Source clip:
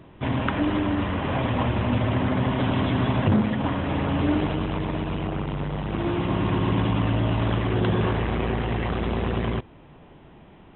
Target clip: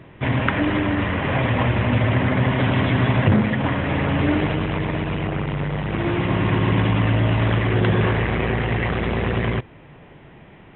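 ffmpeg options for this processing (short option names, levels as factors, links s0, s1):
-af "equalizer=f=125:t=o:w=1:g=6,equalizer=f=500:t=o:w=1:g=4,equalizer=f=2000:t=o:w=1:g=10"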